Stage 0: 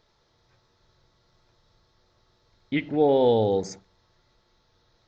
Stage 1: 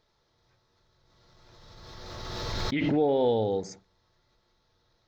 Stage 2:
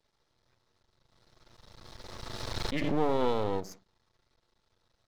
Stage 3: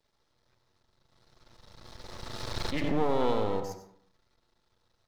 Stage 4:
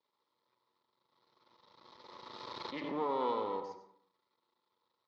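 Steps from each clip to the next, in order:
background raised ahead of every attack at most 23 dB per second; level −5 dB
half-wave rectification
dense smooth reverb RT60 0.62 s, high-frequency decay 0.4×, pre-delay 80 ms, DRR 8 dB
loudspeaker in its box 320–4,300 Hz, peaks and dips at 700 Hz −9 dB, 1,000 Hz +9 dB, 1,600 Hz −9 dB, 2,700 Hz −6 dB; level −5 dB

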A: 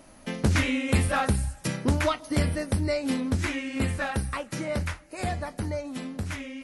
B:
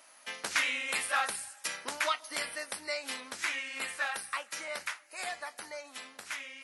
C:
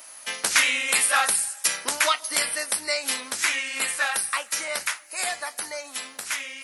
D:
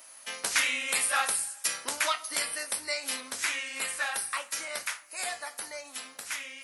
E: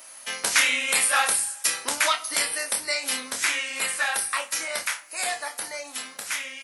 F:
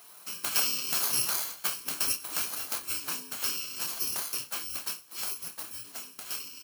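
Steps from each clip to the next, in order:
high-pass filter 1,100 Hz 12 dB per octave
high-shelf EQ 6,100 Hz +12 dB; level +7.5 dB
convolution reverb RT60 0.35 s, pre-delay 7 ms, DRR 8 dB; level −7 dB
double-tracking delay 28 ms −8 dB; level +5.5 dB
samples in bit-reversed order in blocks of 64 samples; gate on every frequency bin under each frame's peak −30 dB strong; level −6.5 dB

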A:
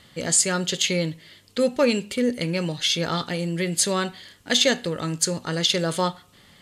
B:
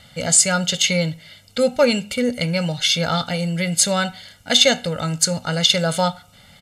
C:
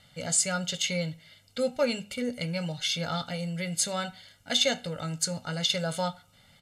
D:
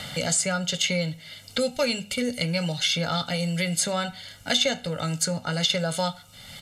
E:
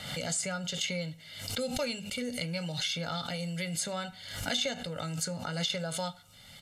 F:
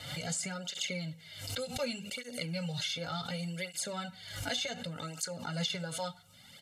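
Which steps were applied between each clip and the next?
comb filter 1.4 ms, depth 80%; level +2.5 dB
flanger 0.39 Hz, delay 6.6 ms, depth 1.2 ms, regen −66%; level −6.5 dB
multiband upward and downward compressor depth 70%; level +4 dB
background raised ahead of every attack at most 56 dB per second; level −9 dB
through-zero flanger with one copy inverted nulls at 0.67 Hz, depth 5.2 ms

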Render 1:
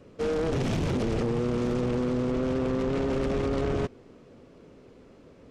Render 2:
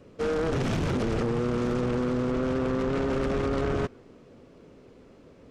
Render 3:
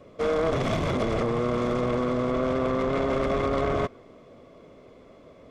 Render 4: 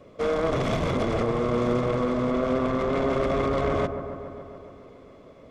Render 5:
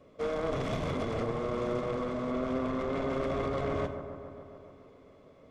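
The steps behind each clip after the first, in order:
dynamic equaliser 1,400 Hz, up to +5 dB, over −51 dBFS, Q 1.7
hollow resonant body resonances 640/1,100/2,100/3,400 Hz, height 11 dB, ringing for 20 ms; level −1 dB
delay with a low-pass on its return 140 ms, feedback 73%, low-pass 1,500 Hz, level −10 dB
dense smooth reverb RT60 0.7 s, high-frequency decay 0.95×, DRR 9 dB; level −8 dB

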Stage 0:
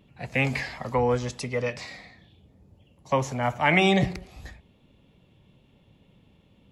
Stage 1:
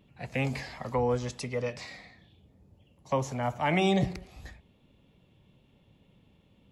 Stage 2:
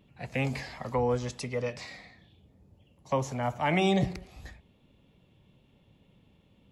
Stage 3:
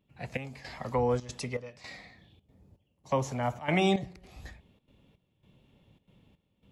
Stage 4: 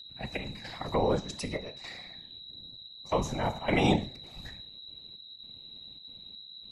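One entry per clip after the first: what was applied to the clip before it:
dynamic equaliser 2,000 Hz, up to −7 dB, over −37 dBFS, Q 1; level −3.5 dB
no processing that can be heard
gate pattern ".xxx...xxxxxx" 163 BPM −12 dB
reverb whose tail is shaped and stops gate 170 ms falling, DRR 10 dB; steady tone 3,900 Hz −45 dBFS; random phases in short frames

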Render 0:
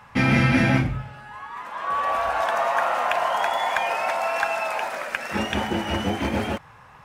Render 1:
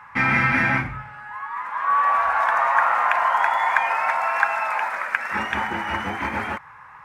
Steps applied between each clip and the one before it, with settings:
flat-topped bell 1,400 Hz +13 dB
level −7 dB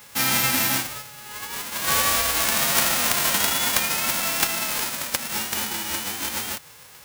spectral envelope flattened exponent 0.1
level −2 dB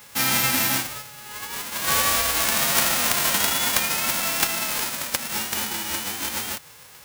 no processing that can be heard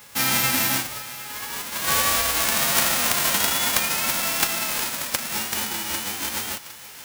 feedback echo with a high-pass in the loop 758 ms, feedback 53%, high-pass 420 Hz, level −15.5 dB

